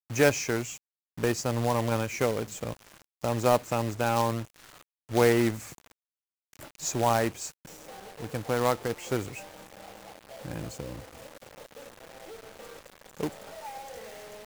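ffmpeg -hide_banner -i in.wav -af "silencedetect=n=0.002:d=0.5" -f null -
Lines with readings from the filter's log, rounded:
silence_start: 5.92
silence_end: 6.53 | silence_duration: 0.61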